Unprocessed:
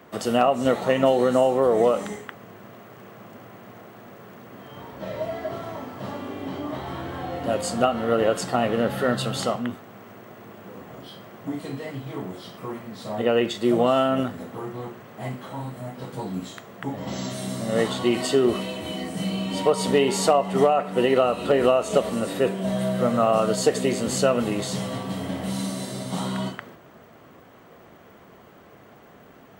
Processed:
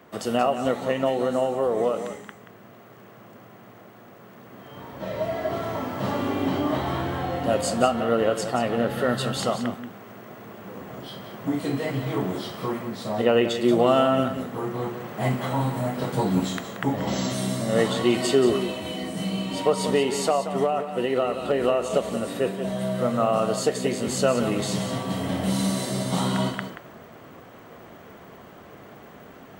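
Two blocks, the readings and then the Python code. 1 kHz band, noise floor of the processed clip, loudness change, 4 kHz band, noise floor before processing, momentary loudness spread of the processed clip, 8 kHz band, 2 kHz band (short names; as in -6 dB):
-0.5 dB, -48 dBFS, -0.5 dB, 0.0 dB, -50 dBFS, 12 LU, 0.0 dB, 0.0 dB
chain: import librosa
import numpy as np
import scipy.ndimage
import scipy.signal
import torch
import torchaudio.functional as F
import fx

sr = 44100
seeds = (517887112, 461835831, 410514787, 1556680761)

y = x + 10.0 ** (-10.0 / 20.0) * np.pad(x, (int(180 * sr / 1000.0), 0))[:len(x)]
y = fx.rider(y, sr, range_db=10, speed_s=2.0)
y = y * librosa.db_to_amplitude(-1.5)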